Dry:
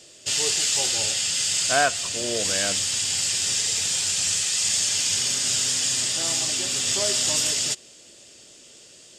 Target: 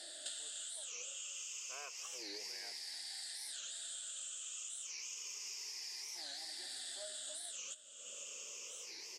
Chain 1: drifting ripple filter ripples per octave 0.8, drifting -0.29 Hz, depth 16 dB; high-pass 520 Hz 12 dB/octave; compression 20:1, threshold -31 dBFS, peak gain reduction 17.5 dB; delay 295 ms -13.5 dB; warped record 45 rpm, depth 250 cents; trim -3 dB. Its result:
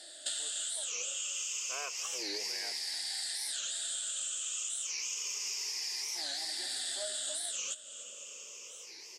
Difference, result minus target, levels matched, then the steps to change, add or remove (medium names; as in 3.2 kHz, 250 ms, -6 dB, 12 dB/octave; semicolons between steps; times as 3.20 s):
compression: peak gain reduction -9 dB
change: compression 20:1, threshold -40.5 dBFS, peak gain reduction 26.5 dB